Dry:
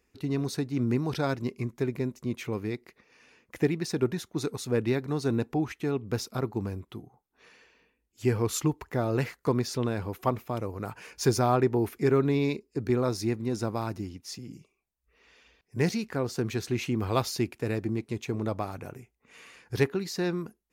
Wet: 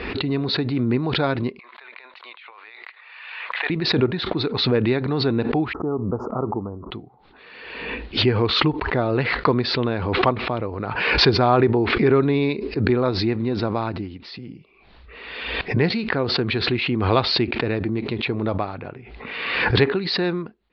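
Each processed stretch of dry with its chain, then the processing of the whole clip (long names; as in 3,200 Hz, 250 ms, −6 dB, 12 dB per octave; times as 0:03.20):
0:01.59–0:03.70: high-pass filter 860 Hz 24 dB per octave + flat-topped bell 6,600 Hz −10.5 dB 1.1 octaves + compressor whose output falls as the input rises −53 dBFS
0:05.73–0:06.91: Chebyshev band-stop filter 1,300–6,900 Hz, order 5 + low-shelf EQ 130 Hz −7 dB
whole clip: Butterworth low-pass 4,400 Hz 72 dB per octave; low-shelf EQ 250 Hz −4.5 dB; background raised ahead of every attack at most 38 dB per second; level +7.5 dB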